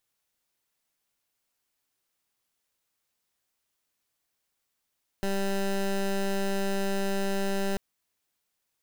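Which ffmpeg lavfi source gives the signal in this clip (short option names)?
-f lavfi -i "aevalsrc='0.0422*(2*lt(mod(196*t,1),0.17)-1)':d=2.54:s=44100"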